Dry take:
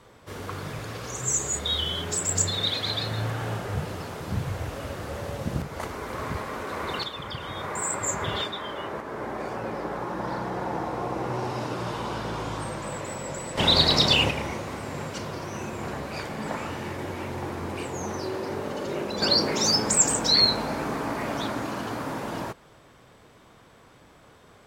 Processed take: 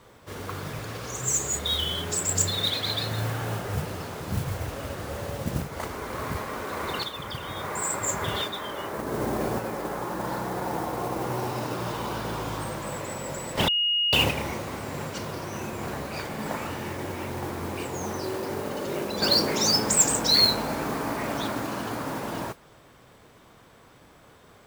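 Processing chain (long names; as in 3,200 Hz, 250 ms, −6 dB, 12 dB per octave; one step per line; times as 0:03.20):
0:08.99–0:09.59: low-shelf EQ 450 Hz +10.5 dB
noise that follows the level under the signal 16 dB
0:13.68–0:14.13: beep over 2,870 Hz −21 dBFS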